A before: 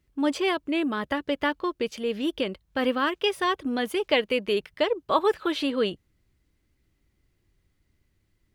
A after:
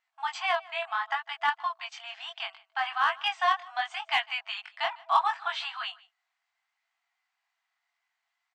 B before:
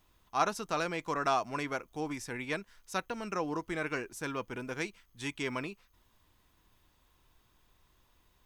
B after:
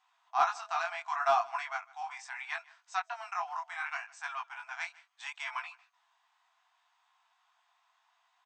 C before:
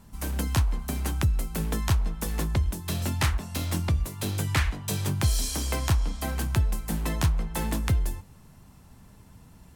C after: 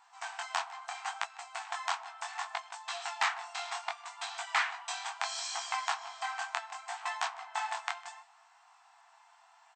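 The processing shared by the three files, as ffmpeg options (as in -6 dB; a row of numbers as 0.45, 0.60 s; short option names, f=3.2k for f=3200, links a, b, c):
-filter_complex "[0:a]flanger=delay=17:depth=7.4:speed=0.7,highshelf=f=3.1k:g=-11.5,afftfilt=real='re*between(b*sr/4096,660,8500)':imag='im*between(b*sr/4096,660,8500)':win_size=4096:overlap=0.75,asplit=2[a][b];[b]asoftclip=type=hard:threshold=-27.5dB,volume=-8dB[c];[a][c]amix=inputs=2:normalize=0,aecho=1:1:153:0.0708,volume=4dB"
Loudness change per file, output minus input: -3.5, 0.0, -8.5 LU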